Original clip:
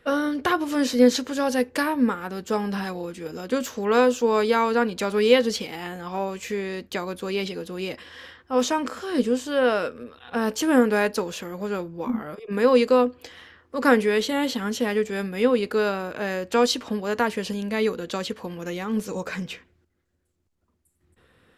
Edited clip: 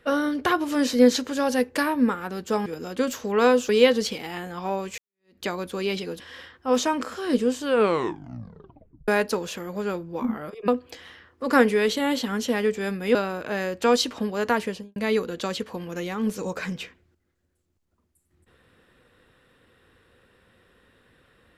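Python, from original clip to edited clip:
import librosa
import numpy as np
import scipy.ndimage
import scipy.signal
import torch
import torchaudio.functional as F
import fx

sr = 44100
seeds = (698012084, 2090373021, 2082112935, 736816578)

y = fx.studio_fade_out(x, sr, start_s=17.32, length_s=0.34)
y = fx.edit(y, sr, fx.cut(start_s=2.66, length_s=0.53),
    fx.cut(start_s=4.22, length_s=0.96),
    fx.fade_in_span(start_s=6.47, length_s=0.43, curve='exp'),
    fx.cut(start_s=7.69, length_s=0.36),
    fx.tape_stop(start_s=9.49, length_s=1.44),
    fx.cut(start_s=12.53, length_s=0.47),
    fx.cut(start_s=15.47, length_s=0.38), tone=tone)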